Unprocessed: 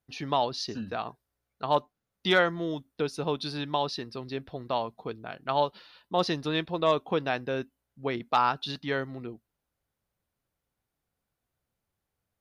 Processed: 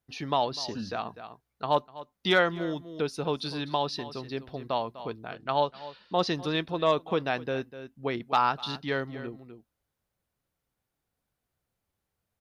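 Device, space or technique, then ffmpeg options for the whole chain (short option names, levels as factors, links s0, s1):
ducked delay: -filter_complex "[0:a]asettb=1/sr,asplit=3[s0][s1][s2];[s0]atrim=end=5.314[s3];[s1]atrim=start=5.31:end=6.35,asetpts=PTS-STARTPTS,afade=t=in:d=0.004:c=qsin,afade=t=out:st=1.036:d=0.004:c=qsin,lowpass=f=8500:w=0.5412,lowpass=f=8500:w=1.3066[s4];[s2]atrim=start=6.346[s5];[s3][s4]acrossfade=d=0.004:c1=hsin:c2=qsin[s6];[s6][s5]acrossfade=d=0.004:c1=qsin:c2=hsin,asplit=3[s7][s8][s9];[s8]adelay=249,volume=0.355[s10];[s9]apad=whole_len=558238[s11];[s10][s11]sidechaincompress=threshold=0.0178:ratio=10:attack=16:release=390[s12];[s7][s12]amix=inputs=2:normalize=0"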